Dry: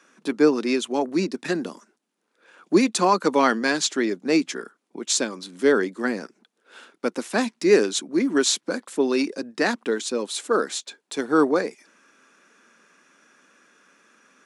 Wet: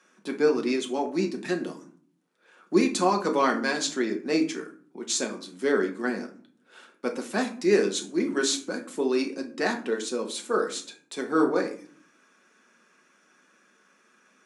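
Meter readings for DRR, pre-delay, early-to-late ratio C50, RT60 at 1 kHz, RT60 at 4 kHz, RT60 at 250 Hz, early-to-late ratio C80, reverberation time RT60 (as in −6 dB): 2.5 dB, 4 ms, 12.0 dB, 0.45 s, 0.30 s, 0.80 s, 17.0 dB, 0.50 s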